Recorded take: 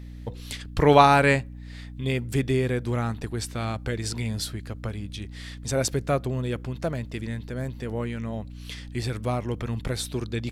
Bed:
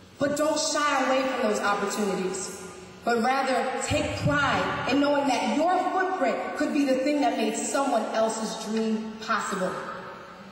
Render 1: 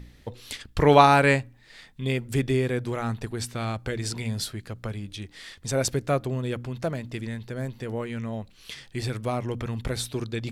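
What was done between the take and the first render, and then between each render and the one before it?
de-hum 60 Hz, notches 5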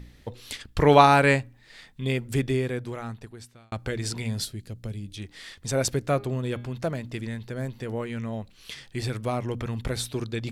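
2.32–3.72 s: fade out; 4.45–5.17 s: peaking EQ 1.2 kHz -14 dB 2 oct; 6.13–6.75 s: de-hum 203.4 Hz, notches 23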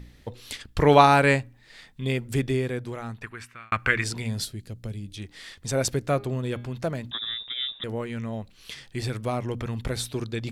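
3.22–4.04 s: high-order bell 1.7 kHz +16 dB; 7.11–7.84 s: frequency inversion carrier 3.7 kHz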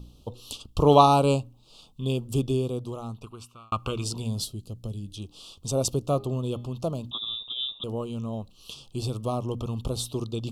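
Chebyshev band-stop 1.2–2.8 kHz, order 3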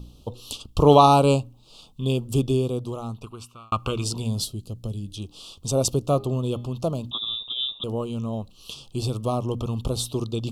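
trim +3.5 dB; peak limiter -3 dBFS, peak gain reduction 3 dB

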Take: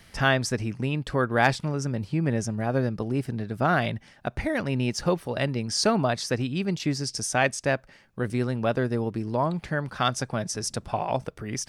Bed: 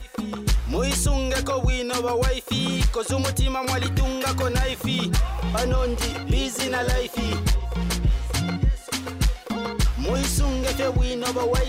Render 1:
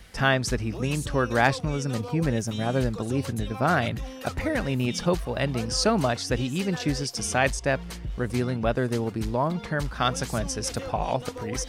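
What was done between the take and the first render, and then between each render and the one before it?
add bed -13 dB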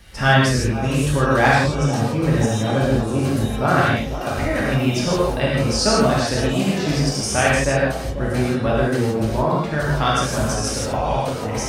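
feedback echo behind a band-pass 494 ms, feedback 64%, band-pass 530 Hz, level -10 dB; gated-style reverb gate 190 ms flat, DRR -6 dB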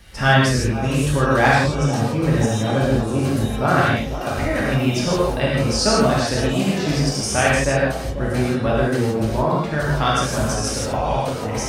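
no audible change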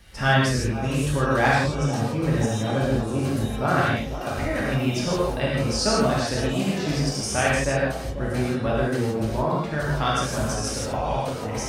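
trim -4.5 dB

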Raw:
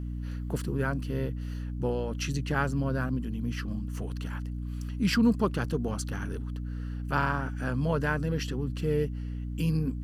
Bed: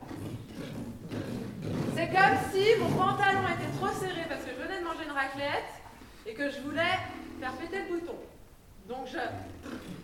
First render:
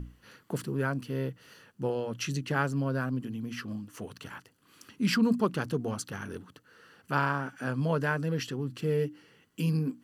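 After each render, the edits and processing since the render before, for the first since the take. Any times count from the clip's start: hum notches 60/120/180/240/300 Hz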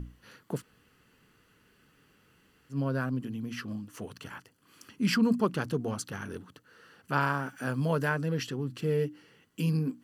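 0.59–2.74 s: room tone, crossfade 0.10 s; 4.13–5.54 s: band-stop 3.8 kHz; 7.21–8.09 s: treble shelf 9.4 kHz +11.5 dB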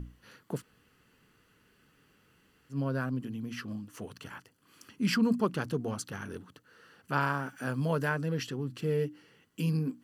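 trim -1.5 dB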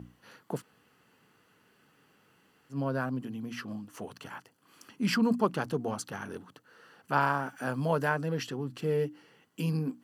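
high-pass 120 Hz; peaking EQ 790 Hz +7 dB 0.9 oct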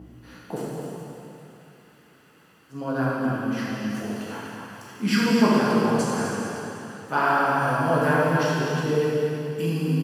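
delay 251 ms -8 dB; plate-style reverb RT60 2.9 s, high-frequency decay 0.9×, DRR -7.5 dB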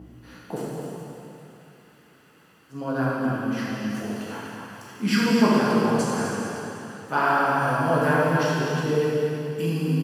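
no audible change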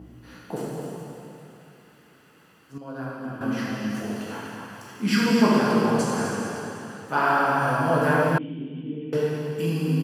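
2.78–3.41 s: gain -9 dB; 8.38–9.13 s: cascade formant filter i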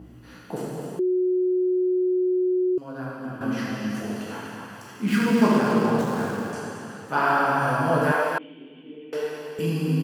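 0.99–2.78 s: bleep 366 Hz -19 dBFS; 5.05–6.53 s: median filter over 9 samples; 8.12–9.59 s: high-pass 490 Hz

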